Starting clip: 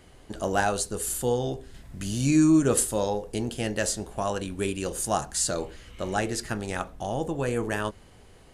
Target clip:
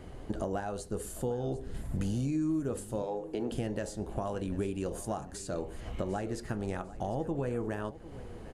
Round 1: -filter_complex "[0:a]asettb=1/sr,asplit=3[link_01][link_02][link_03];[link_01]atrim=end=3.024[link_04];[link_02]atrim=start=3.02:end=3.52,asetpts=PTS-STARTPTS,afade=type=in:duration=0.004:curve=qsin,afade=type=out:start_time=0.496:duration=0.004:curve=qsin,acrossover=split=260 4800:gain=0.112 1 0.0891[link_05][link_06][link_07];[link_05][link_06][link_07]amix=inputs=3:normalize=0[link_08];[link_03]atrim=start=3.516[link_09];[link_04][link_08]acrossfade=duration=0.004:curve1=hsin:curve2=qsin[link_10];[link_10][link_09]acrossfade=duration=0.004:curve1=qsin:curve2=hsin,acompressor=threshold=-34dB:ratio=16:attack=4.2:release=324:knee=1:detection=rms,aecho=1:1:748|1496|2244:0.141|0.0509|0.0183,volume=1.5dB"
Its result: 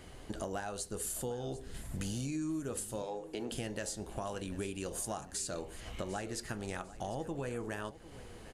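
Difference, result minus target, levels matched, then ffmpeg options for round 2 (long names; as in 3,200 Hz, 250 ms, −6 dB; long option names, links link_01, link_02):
2,000 Hz band +5.0 dB
-filter_complex "[0:a]asettb=1/sr,asplit=3[link_01][link_02][link_03];[link_01]atrim=end=3.024[link_04];[link_02]atrim=start=3.02:end=3.52,asetpts=PTS-STARTPTS,afade=type=in:duration=0.004:curve=qsin,afade=type=out:start_time=0.496:duration=0.004:curve=qsin,acrossover=split=260 4800:gain=0.112 1 0.0891[link_05][link_06][link_07];[link_05][link_06][link_07]amix=inputs=3:normalize=0[link_08];[link_03]atrim=start=3.516[link_09];[link_04][link_08]acrossfade=duration=0.004:curve1=hsin:curve2=qsin[link_10];[link_10][link_09]acrossfade=duration=0.004:curve1=qsin:curve2=hsin,acompressor=threshold=-34dB:ratio=16:attack=4.2:release=324:knee=1:detection=rms,tiltshelf=frequency=1500:gain=6.5,aecho=1:1:748|1496|2244:0.141|0.0509|0.0183,volume=1.5dB"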